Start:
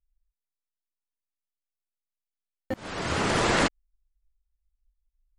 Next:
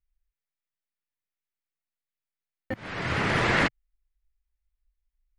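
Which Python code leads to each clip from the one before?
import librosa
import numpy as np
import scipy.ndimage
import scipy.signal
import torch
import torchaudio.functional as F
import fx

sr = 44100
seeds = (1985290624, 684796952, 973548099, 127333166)

y = fx.graphic_eq(x, sr, hz=(125, 2000, 8000), db=(7, 8, -9))
y = y * 10.0 ** (-3.0 / 20.0)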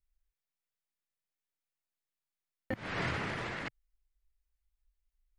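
y = fx.over_compress(x, sr, threshold_db=-30.0, ratio=-1.0)
y = y * 10.0 ** (-6.5 / 20.0)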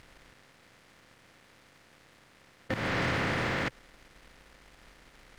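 y = fx.bin_compress(x, sr, power=0.4)
y = fx.leveller(y, sr, passes=2)
y = y * 10.0 ** (-4.0 / 20.0)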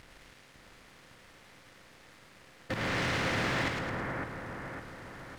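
y = fx.fold_sine(x, sr, drive_db=5, ceiling_db=-20.5)
y = fx.echo_split(y, sr, split_hz=1900.0, low_ms=557, high_ms=107, feedback_pct=52, wet_db=-3.5)
y = y * 10.0 ** (-8.0 / 20.0)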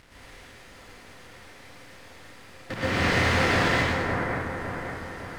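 y = fx.rev_plate(x, sr, seeds[0], rt60_s=0.66, hf_ratio=0.8, predelay_ms=110, drr_db=-7.5)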